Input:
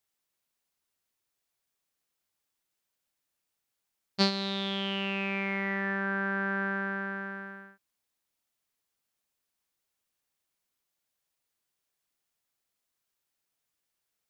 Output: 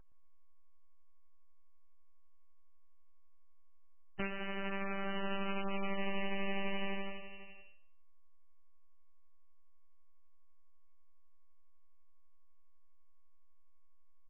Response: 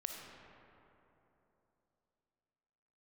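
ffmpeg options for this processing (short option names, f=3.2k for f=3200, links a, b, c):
-filter_complex "[0:a]agate=range=-19dB:threshold=-32dB:ratio=16:detection=peak,highpass=650,aemphasis=mode=reproduction:type=75fm,acompressor=threshold=-44dB:ratio=4,asoftclip=type=tanh:threshold=-31.5dB,aeval=exprs='val(0)+0.000708*sin(2*PI*4300*n/s)':c=same,aeval=exprs='abs(val(0))':c=same,tremolo=f=12:d=0.29,asplit=2[a][b];[b]adelay=119,lowpass=f=4.1k:p=1,volume=-13dB,asplit=2[c][d];[d]adelay=119,lowpass=f=4.1k:p=1,volume=0.29,asplit=2[e][f];[f]adelay=119,lowpass=f=4.1k:p=1,volume=0.29[g];[c][e][g]amix=inputs=3:normalize=0[h];[a][h]amix=inputs=2:normalize=0,volume=14dB" -ar 16000 -c:a libmp3lame -b:a 8k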